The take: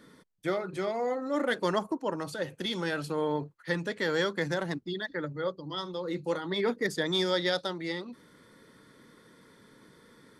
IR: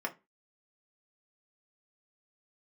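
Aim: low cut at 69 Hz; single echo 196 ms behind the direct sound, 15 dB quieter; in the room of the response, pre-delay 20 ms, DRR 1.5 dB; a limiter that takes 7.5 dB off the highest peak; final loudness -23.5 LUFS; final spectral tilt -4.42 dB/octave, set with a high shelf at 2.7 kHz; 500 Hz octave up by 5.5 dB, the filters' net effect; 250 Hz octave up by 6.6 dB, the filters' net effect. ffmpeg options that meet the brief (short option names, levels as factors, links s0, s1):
-filter_complex "[0:a]highpass=69,equalizer=f=250:t=o:g=8,equalizer=f=500:t=o:g=4,highshelf=f=2700:g=3.5,alimiter=limit=0.112:level=0:latency=1,aecho=1:1:196:0.178,asplit=2[s0][s1];[1:a]atrim=start_sample=2205,adelay=20[s2];[s1][s2]afir=irnorm=-1:irlink=0,volume=0.531[s3];[s0][s3]amix=inputs=2:normalize=0,volume=1.5"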